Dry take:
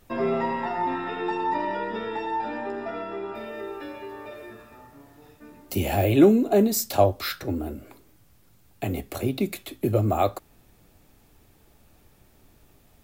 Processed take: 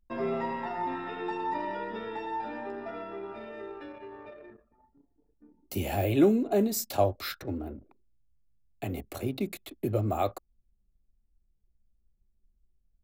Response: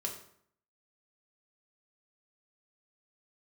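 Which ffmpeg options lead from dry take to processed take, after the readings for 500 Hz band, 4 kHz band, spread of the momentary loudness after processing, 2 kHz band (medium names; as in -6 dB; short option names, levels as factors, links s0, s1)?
-6.0 dB, -6.0 dB, 17 LU, -6.0 dB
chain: -af "anlmdn=0.398,volume=0.501"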